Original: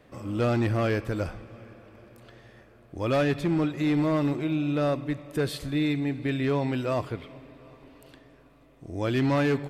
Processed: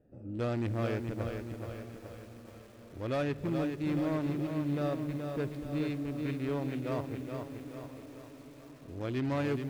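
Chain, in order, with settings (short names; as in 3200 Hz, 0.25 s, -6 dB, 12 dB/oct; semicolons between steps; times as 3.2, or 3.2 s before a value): Wiener smoothing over 41 samples; diffused feedback echo 0.983 s, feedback 63%, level -16 dB; on a send at -19 dB: reverb RT60 1.3 s, pre-delay 5 ms; on the sum: lo-fi delay 0.426 s, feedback 55%, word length 8-bit, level -5.5 dB; gain -7.5 dB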